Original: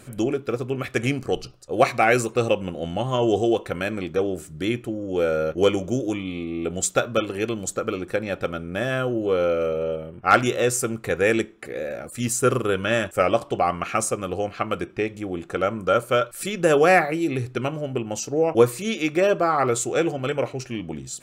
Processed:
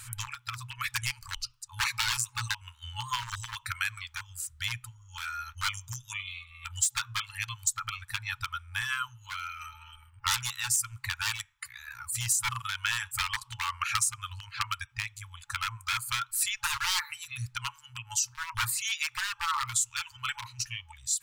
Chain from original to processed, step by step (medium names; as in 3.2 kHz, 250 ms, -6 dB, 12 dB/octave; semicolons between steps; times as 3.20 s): reverb removal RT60 1.9 s; wavefolder -17 dBFS; treble shelf 3.1 kHz +8.5 dB; compression, threshold -24 dBFS, peak gain reduction 10 dB; FFT band-reject 120–850 Hz